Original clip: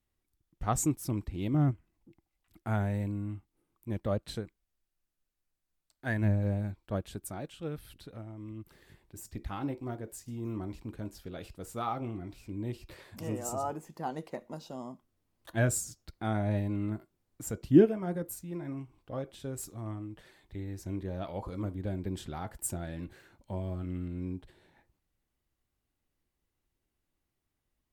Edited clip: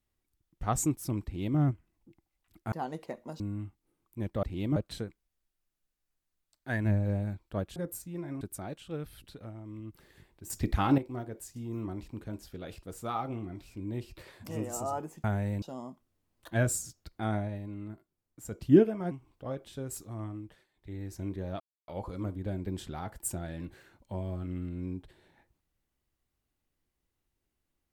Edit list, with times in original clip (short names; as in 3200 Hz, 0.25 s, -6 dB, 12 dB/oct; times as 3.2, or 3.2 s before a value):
1.25–1.58 copy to 4.13
2.72–3.1 swap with 13.96–14.64
9.22–9.7 gain +10.5 dB
16.38–17.6 dip -8 dB, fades 0.14 s
18.13–18.78 move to 7.13
20.08–20.66 dip -16 dB, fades 0.26 s
21.27 insert silence 0.28 s